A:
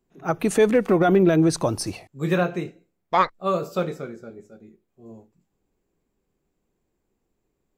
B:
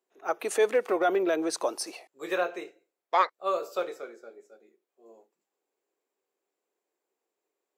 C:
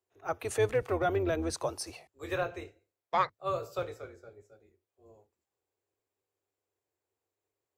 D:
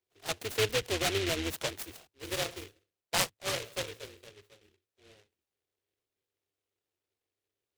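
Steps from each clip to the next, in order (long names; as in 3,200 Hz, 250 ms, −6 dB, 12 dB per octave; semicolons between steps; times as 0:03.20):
high-pass filter 400 Hz 24 dB per octave; level −4 dB
sub-octave generator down 2 octaves, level −1 dB; level −4.5 dB
short delay modulated by noise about 2,600 Hz, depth 0.24 ms; level −1.5 dB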